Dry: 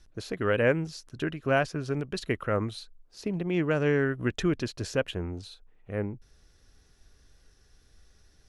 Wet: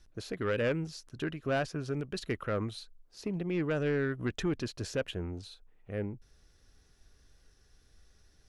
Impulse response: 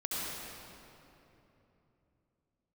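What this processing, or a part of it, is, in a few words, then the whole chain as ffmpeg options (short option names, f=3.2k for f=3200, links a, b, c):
saturation between pre-emphasis and de-emphasis: -af "highshelf=f=5.7k:g=9.5,asoftclip=type=tanh:threshold=-20dB,highshelf=f=5.7k:g=-9.5,volume=-3dB"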